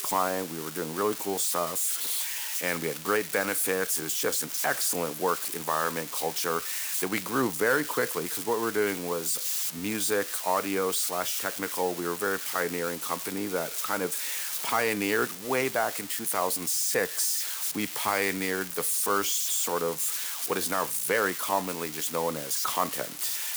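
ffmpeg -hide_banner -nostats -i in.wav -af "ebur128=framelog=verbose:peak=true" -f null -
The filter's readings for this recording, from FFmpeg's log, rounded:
Integrated loudness:
  I:         -27.5 LUFS
  Threshold: -37.5 LUFS
Loudness range:
  LRA:         2.0 LU
  Threshold: -47.4 LUFS
  LRA low:   -28.5 LUFS
  LRA high:  -26.5 LUFS
True peak:
  Peak:      -11.6 dBFS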